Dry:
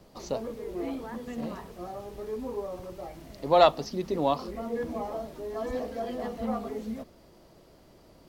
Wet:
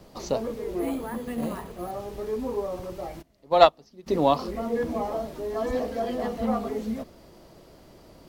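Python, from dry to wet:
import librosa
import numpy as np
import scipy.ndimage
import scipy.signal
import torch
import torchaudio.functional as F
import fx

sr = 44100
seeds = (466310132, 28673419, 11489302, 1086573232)

y = fx.resample_bad(x, sr, factor=4, down='filtered', up='hold', at=(0.79, 1.91))
y = fx.upward_expand(y, sr, threshold_db=-30.0, expansion=2.5, at=(3.21, 4.06), fade=0.02)
y = y * librosa.db_to_amplitude(5.0)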